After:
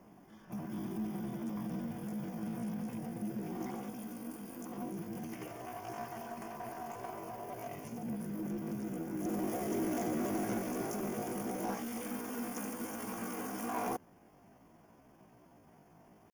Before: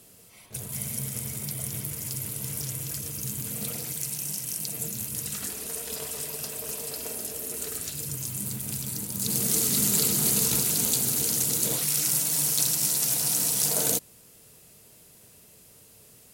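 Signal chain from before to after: pitch shift +8 st; boxcar filter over 11 samples; reverse echo 665 ms -22 dB; in parallel at -4 dB: hard clipper -35.5 dBFS, distortion -9 dB; on the sum: trim -4.5 dB

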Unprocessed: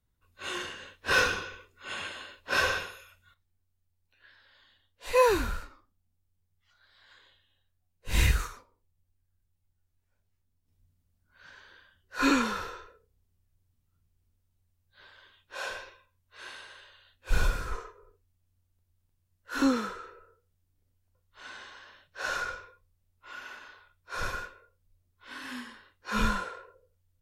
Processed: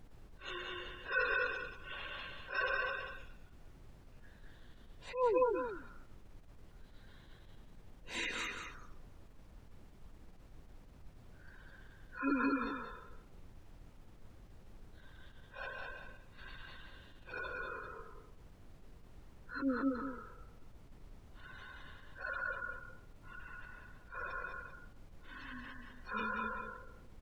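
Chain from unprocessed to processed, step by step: steep high-pass 240 Hz; delay 208 ms -3.5 dB; spectral gate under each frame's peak -15 dB strong; delay 186 ms -7.5 dB; added noise brown -45 dBFS; attacks held to a fixed rise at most 150 dB/s; trim -7.5 dB

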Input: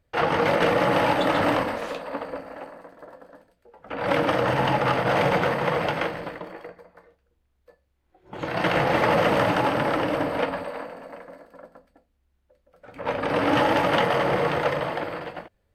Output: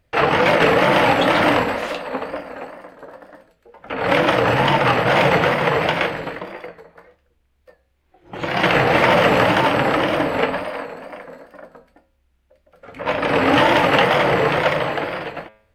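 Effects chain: wow and flutter 110 cents; peaking EQ 2.5 kHz +4.5 dB 1.1 oct; de-hum 107.7 Hz, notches 38; trim +5.5 dB

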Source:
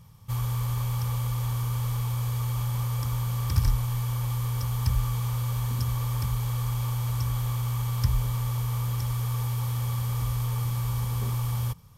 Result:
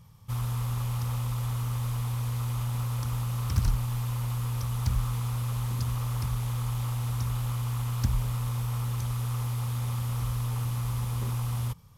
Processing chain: loudspeaker Doppler distortion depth 0.77 ms; trim -2 dB

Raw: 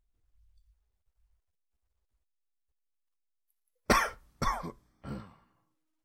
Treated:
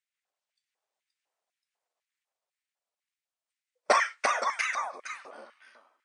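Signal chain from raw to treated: brick-wall FIR band-pass 180–9300 Hz; ever faster or slower copies 558 ms, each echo +1 st, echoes 2; LFO high-pass square 2 Hz 630–2000 Hz

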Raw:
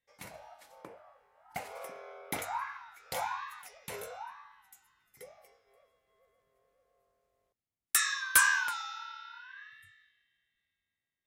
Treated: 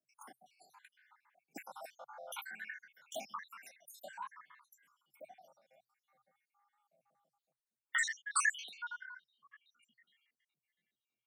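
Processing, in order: random holes in the spectrogram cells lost 76%; 8.08–9.66 s: level-controlled noise filter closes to 870 Hz, open at -30.5 dBFS; frequency shift +120 Hz; harmonic-percussive split percussive -5 dB; trim +4 dB

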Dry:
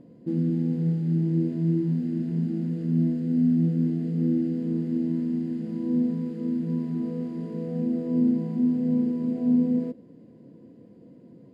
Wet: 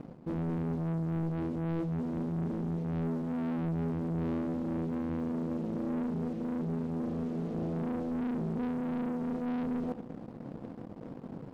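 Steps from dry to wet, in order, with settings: bass shelf 150 Hz +7.5 dB; waveshaping leveller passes 3; reverse; compression 4:1, threshold -29 dBFS, peak gain reduction 12.5 dB; reverse; filtered feedback delay 91 ms, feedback 75%, level -19 dB; loudspeaker Doppler distortion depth 0.76 ms; trim -5 dB

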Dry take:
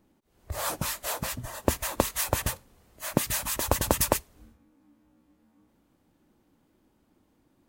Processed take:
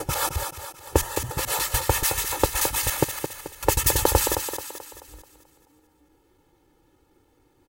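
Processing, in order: slices played last to first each 145 ms, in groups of 6; comb 2.3 ms, depth 87%; in parallel at -8 dB: hard clipper -16 dBFS, distortion -9 dB; on the sum: thinning echo 217 ms, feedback 48%, high-pass 170 Hz, level -7 dB

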